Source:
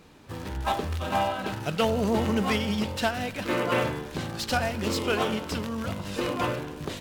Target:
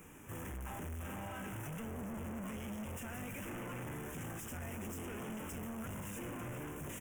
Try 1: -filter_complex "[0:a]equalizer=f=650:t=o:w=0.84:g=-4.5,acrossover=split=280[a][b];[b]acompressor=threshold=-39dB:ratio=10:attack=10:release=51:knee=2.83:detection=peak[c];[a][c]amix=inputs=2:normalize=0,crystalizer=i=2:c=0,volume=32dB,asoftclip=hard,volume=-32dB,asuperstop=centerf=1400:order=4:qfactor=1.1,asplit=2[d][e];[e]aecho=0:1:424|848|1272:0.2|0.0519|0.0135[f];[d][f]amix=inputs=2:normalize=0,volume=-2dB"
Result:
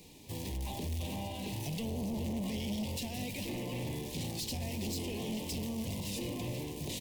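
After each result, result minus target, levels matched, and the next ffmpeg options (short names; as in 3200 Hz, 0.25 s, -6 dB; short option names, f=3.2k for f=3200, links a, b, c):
4000 Hz band +8.5 dB; overloaded stage: distortion -4 dB
-filter_complex "[0:a]equalizer=f=650:t=o:w=0.84:g=-4.5,acrossover=split=280[a][b];[b]acompressor=threshold=-39dB:ratio=10:attack=10:release=51:knee=2.83:detection=peak[c];[a][c]amix=inputs=2:normalize=0,crystalizer=i=2:c=0,volume=32dB,asoftclip=hard,volume=-32dB,asuperstop=centerf=4300:order=4:qfactor=1.1,asplit=2[d][e];[e]aecho=0:1:424|848|1272:0.2|0.0519|0.0135[f];[d][f]amix=inputs=2:normalize=0,volume=-2dB"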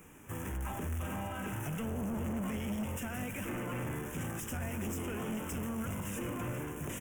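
overloaded stage: distortion -4 dB
-filter_complex "[0:a]equalizer=f=650:t=o:w=0.84:g=-4.5,acrossover=split=280[a][b];[b]acompressor=threshold=-39dB:ratio=10:attack=10:release=51:knee=2.83:detection=peak[c];[a][c]amix=inputs=2:normalize=0,crystalizer=i=2:c=0,volume=40dB,asoftclip=hard,volume=-40dB,asuperstop=centerf=4300:order=4:qfactor=1.1,asplit=2[d][e];[e]aecho=0:1:424|848|1272:0.2|0.0519|0.0135[f];[d][f]amix=inputs=2:normalize=0,volume=-2dB"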